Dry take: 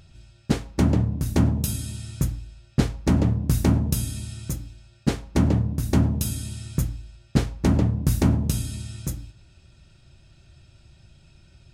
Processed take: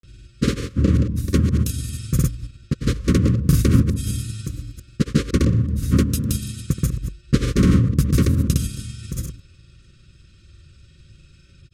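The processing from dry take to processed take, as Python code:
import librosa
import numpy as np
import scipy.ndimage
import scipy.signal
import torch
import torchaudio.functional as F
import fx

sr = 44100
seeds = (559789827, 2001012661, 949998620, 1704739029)

y = fx.reverse_delay(x, sr, ms=113, wet_db=-9.0)
y = fx.granulator(y, sr, seeds[0], grain_ms=100.0, per_s=20.0, spray_ms=100.0, spread_st=0)
y = scipy.signal.sosfilt(scipy.signal.ellip(3, 1.0, 40, [540.0, 1100.0], 'bandstop', fs=sr, output='sos'), y)
y = y * librosa.db_to_amplitude(4.5)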